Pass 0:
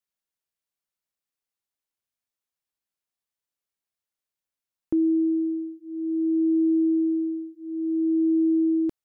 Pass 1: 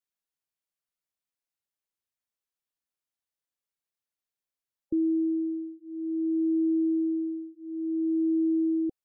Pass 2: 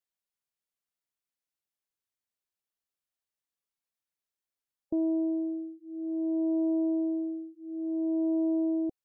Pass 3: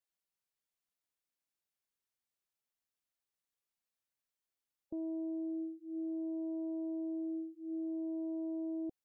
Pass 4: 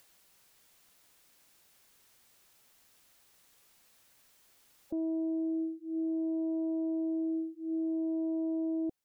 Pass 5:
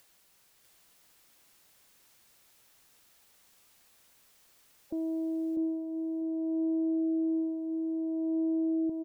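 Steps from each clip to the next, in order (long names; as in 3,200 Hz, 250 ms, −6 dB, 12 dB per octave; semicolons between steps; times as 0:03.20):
gate on every frequency bin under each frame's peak −25 dB strong; level −4 dB
phase distortion by the signal itself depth 0.21 ms; level −2 dB
brickwall limiter −33.5 dBFS, peak gain reduction 10.5 dB; level −1.5 dB
upward compression, threshold −53 dBFS; level +6 dB
repeating echo 647 ms, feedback 20%, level −3.5 dB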